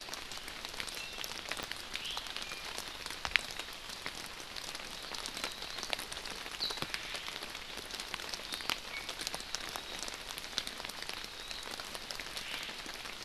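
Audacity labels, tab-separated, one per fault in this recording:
1.630000	1.630000	pop -21 dBFS

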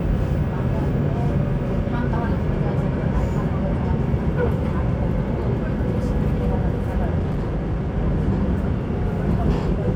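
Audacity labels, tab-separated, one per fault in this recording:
7.180000	7.910000	clipped -19.5 dBFS

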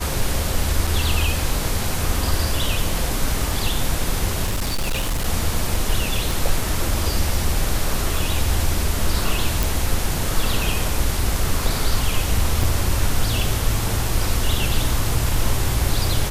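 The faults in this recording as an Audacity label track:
0.870000	0.870000	dropout 4.7 ms
4.440000	5.270000	clipped -18 dBFS
6.310000	6.310000	pop
9.630000	9.630000	pop
12.630000	12.630000	dropout 4.7 ms

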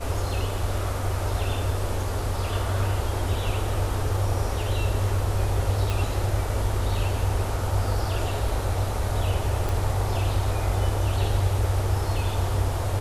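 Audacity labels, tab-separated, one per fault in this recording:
5.900000	5.900000	pop
9.690000	9.690000	pop

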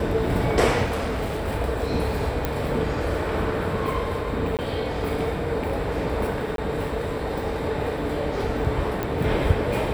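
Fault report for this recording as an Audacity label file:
0.840000	1.480000	clipped -23 dBFS
2.450000	2.450000	pop -10 dBFS
4.570000	4.590000	dropout 18 ms
6.560000	6.580000	dropout 22 ms
9.030000	9.030000	pop -13 dBFS

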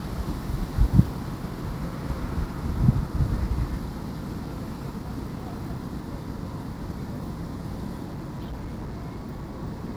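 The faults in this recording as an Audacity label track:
8.060000	9.600000	clipped -30.5 dBFS

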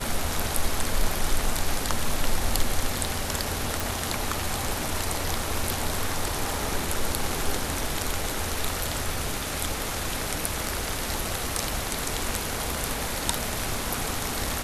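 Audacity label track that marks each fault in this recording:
3.800000	3.800000	pop

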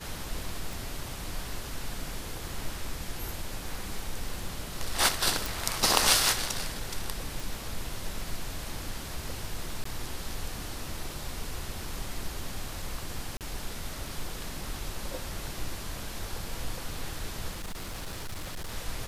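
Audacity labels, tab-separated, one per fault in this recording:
0.730000	0.730000	pop
5.460000	5.460000	pop
7.400000	7.400000	pop
9.840000	9.850000	dropout 14 ms
13.370000	13.410000	dropout 38 ms
17.520000	18.750000	clipped -32.5 dBFS

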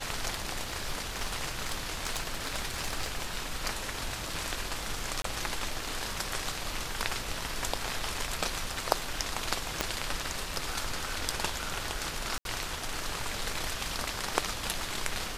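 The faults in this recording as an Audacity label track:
0.610000	3.420000	clipped -25.5 dBFS
5.220000	5.240000	dropout 23 ms
9.810000	9.810000	pop -10 dBFS
12.380000	12.450000	dropout 72 ms

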